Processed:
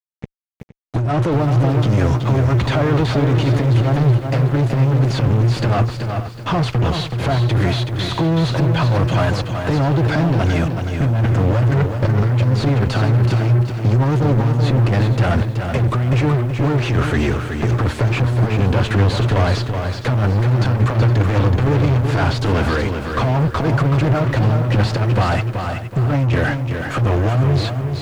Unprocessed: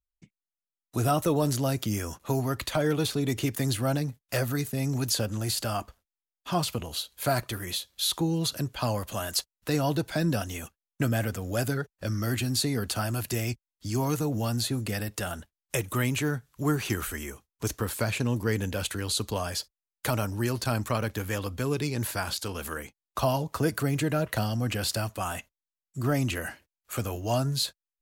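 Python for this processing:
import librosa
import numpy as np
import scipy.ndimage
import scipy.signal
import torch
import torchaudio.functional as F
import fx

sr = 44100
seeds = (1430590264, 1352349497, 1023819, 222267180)

p1 = scipy.signal.sosfilt(scipy.signal.butter(4, 59.0, 'highpass', fs=sr, output='sos'), x)
p2 = fx.peak_eq(p1, sr, hz=120.0, db=13.0, octaves=0.24)
p3 = fx.over_compress(p2, sr, threshold_db=-29.0, ratio=-1.0)
p4 = fx.fuzz(p3, sr, gain_db=38.0, gate_db=-43.0)
p5 = fx.spacing_loss(p4, sr, db_at_10k=29)
p6 = p5 + fx.echo_single(p5, sr, ms=466, db=-14.5, dry=0)
y = fx.echo_crushed(p6, sr, ms=376, feedback_pct=35, bits=8, wet_db=-6.0)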